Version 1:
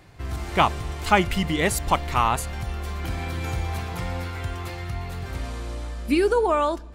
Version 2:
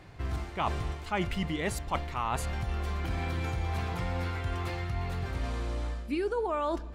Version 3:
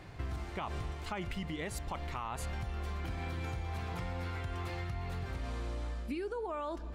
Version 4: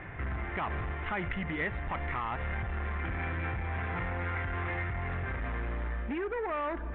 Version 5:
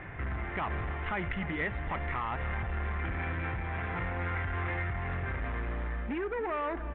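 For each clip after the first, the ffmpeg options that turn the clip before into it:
-af "areverse,acompressor=threshold=0.0398:ratio=6,areverse,highshelf=f=6900:g=-10.5"
-af "alimiter=limit=0.0631:level=0:latency=1:release=98,acompressor=threshold=0.0158:ratio=6,volume=1.12"
-af "aresample=8000,asoftclip=type=hard:threshold=0.015,aresample=44100,lowpass=f=1900:t=q:w=2.9,volume=1.78"
-af "aecho=1:1:298:0.2"

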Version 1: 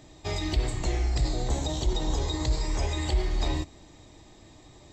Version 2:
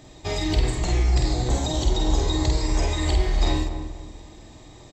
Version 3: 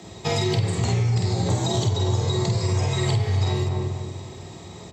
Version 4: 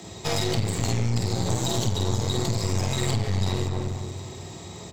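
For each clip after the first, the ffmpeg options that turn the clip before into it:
-filter_complex "[0:a]asplit=2[s0][s1];[s1]adelay=48,volume=0.668[s2];[s0][s2]amix=inputs=2:normalize=0,asplit=2[s3][s4];[s4]adelay=243,lowpass=f=1200:p=1,volume=0.398,asplit=2[s5][s6];[s6]adelay=243,lowpass=f=1200:p=1,volume=0.4,asplit=2[s7][s8];[s8]adelay=243,lowpass=f=1200:p=1,volume=0.4,asplit=2[s9][s10];[s10]adelay=243,lowpass=f=1200:p=1,volume=0.4,asplit=2[s11][s12];[s12]adelay=243,lowpass=f=1200:p=1,volume=0.4[s13];[s3][s5][s7][s9][s11][s13]amix=inputs=6:normalize=0,volume=1.5"
-af "afreqshift=56,acompressor=threshold=0.0562:ratio=6,bandreject=f=70.46:t=h:w=4,bandreject=f=140.92:t=h:w=4,bandreject=f=211.38:t=h:w=4,bandreject=f=281.84:t=h:w=4,bandreject=f=352.3:t=h:w=4,bandreject=f=422.76:t=h:w=4,bandreject=f=493.22:t=h:w=4,bandreject=f=563.68:t=h:w=4,bandreject=f=634.14:t=h:w=4,bandreject=f=704.6:t=h:w=4,bandreject=f=775.06:t=h:w=4,bandreject=f=845.52:t=h:w=4,bandreject=f=915.98:t=h:w=4,bandreject=f=986.44:t=h:w=4,bandreject=f=1056.9:t=h:w=4,bandreject=f=1127.36:t=h:w=4,bandreject=f=1197.82:t=h:w=4,bandreject=f=1268.28:t=h:w=4,bandreject=f=1338.74:t=h:w=4,bandreject=f=1409.2:t=h:w=4,bandreject=f=1479.66:t=h:w=4,bandreject=f=1550.12:t=h:w=4,bandreject=f=1620.58:t=h:w=4,bandreject=f=1691.04:t=h:w=4,bandreject=f=1761.5:t=h:w=4,bandreject=f=1831.96:t=h:w=4,bandreject=f=1902.42:t=h:w=4,bandreject=f=1972.88:t=h:w=4,bandreject=f=2043.34:t=h:w=4,bandreject=f=2113.8:t=h:w=4,bandreject=f=2184.26:t=h:w=4,bandreject=f=2254.72:t=h:w=4,bandreject=f=2325.18:t=h:w=4,bandreject=f=2395.64:t=h:w=4,bandreject=f=2466.1:t=h:w=4,bandreject=f=2536.56:t=h:w=4,bandreject=f=2607.02:t=h:w=4,bandreject=f=2677.48:t=h:w=4,bandreject=f=2747.94:t=h:w=4,volume=2"
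-af "highshelf=f=7200:g=9.5,aeval=exprs='clip(val(0),-1,0.0251)':c=same"

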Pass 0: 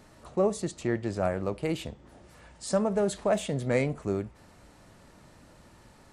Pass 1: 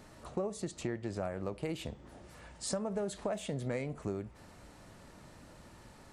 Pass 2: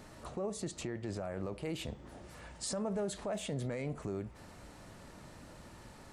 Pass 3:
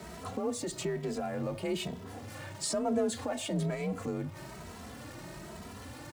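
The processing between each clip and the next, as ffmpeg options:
-af "acompressor=threshold=0.0224:ratio=6"
-af "alimiter=level_in=2.24:limit=0.0631:level=0:latency=1:release=14,volume=0.447,volume=1.26"
-filter_complex "[0:a]aeval=exprs='val(0)+0.5*0.00251*sgn(val(0))':c=same,afreqshift=38,asplit=2[s0][s1];[s1]adelay=2.7,afreqshift=1.1[s2];[s0][s2]amix=inputs=2:normalize=1,volume=2.24"

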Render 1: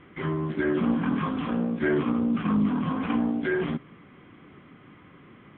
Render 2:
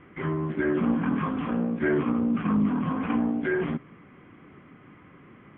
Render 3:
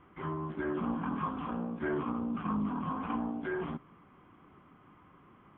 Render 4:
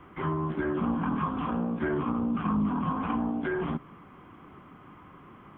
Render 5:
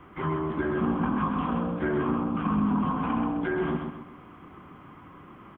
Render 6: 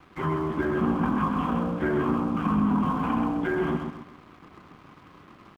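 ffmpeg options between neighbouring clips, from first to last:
-af "lowpass=f=2800:w=0.5412,lowpass=f=2800:w=1.3066"
-af "equalizer=f=125:t=o:w=1:g=-6,equalizer=f=250:t=o:w=1:g=-5,equalizer=f=500:t=o:w=1:g=-6,equalizer=f=1000:t=o:w=1:g=5,equalizer=f=2000:t=o:w=1:g=-11,volume=0.708"
-filter_complex "[0:a]acrossover=split=180[s0][s1];[s1]acompressor=threshold=0.0126:ratio=2.5[s2];[s0][s2]amix=inputs=2:normalize=0,volume=2.66"
-af "aecho=1:1:130|260|390|520|650:0.562|0.214|0.0812|0.0309|0.0117,volume=1.12"
-af "aeval=exprs='sgn(val(0))*max(abs(val(0))-0.00237,0)':c=same,volume=1.26"

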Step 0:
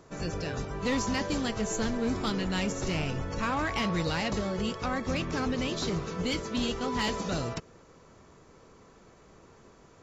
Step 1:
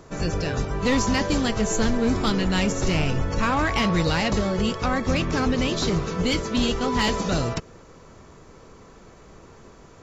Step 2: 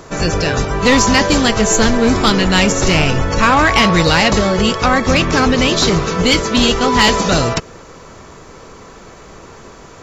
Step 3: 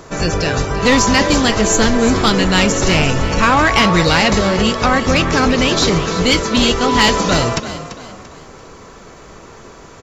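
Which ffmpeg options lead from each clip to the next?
-af "lowshelf=f=61:g=7,volume=2.24"
-af "lowshelf=f=450:g=-6,acontrast=75,volume=2.11"
-filter_complex "[0:a]asplit=5[s0][s1][s2][s3][s4];[s1]adelay=340,afreqshift=38,volume=0.237[s5];[s2]adelay=680,afreqshift=76,volume=0.0851[s6];[s3]adelay=1020,afreqshift=114,volume=0.0309[s7];[s4]adelay=1360,afreqshift=152,volume=0.0111[s8];[s0][s5][s6][s7][s8]amix=inputs=5:normalize=0,volume=0.891"

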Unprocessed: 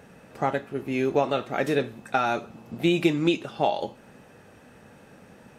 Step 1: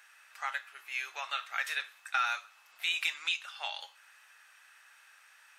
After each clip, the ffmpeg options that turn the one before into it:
-af "highpass=f=1300:w=0.5412,highpass=f=1300:w=1.3066"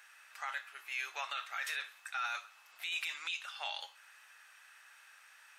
-af "alimiter=level_in=1.58:limit=0.0631:level=0:latency=1:release=12,volume=0.631"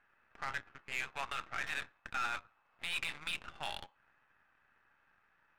-af "aeval=exprs='0.0422*(cos(1*acos(clip(val(0)/0.0422,-1,1)))-cos(1*PI/2))+0.00237*(cos(7*acos(clip(val(0)/0.0422,-1,1)))-cos(7*PI/2))+0.00376*(cos(8*acos(clip(val(0)/0.0422,-1,1)))-cos(8*PI/2))':c=same,adynamicsmooth=sensitivity=8:basefreq=1100,volume=1.19"

